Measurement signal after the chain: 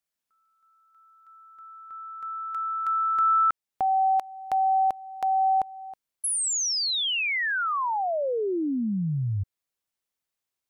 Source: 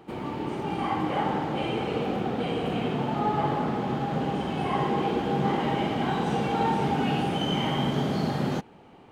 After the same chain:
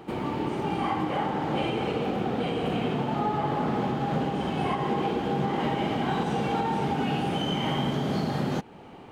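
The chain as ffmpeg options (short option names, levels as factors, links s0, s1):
-filter_complex "[0:a]asplit=2[s0][s1];[s1]acompressor=threshold=0.0141:ratio=6,volume=0.891[s2];[s0][s2]amix=inputs=2:normalize=0,alimiter=limit=0.133:level=0:latency=1:release=242"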